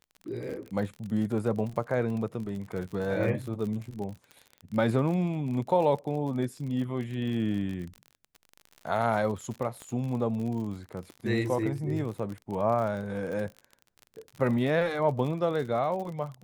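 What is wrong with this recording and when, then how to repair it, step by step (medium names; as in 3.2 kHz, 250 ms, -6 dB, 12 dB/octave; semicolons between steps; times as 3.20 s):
crackle 44 per s -35 dBFS
9.82 s: pop -27 dBFS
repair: de-click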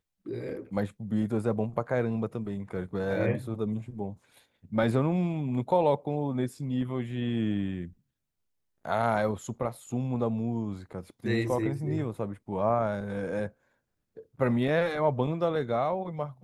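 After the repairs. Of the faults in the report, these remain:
9.82 s: pop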